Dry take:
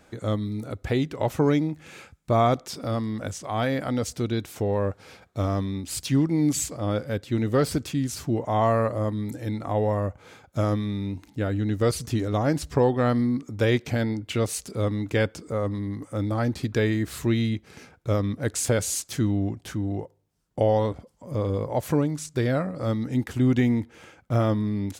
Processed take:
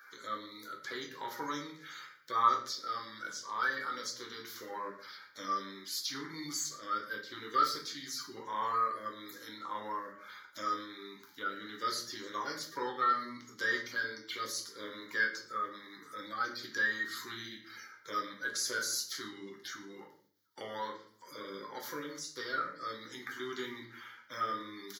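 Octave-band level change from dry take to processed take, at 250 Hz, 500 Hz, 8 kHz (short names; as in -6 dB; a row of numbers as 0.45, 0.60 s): -22.5, -19.0, -7.5 dB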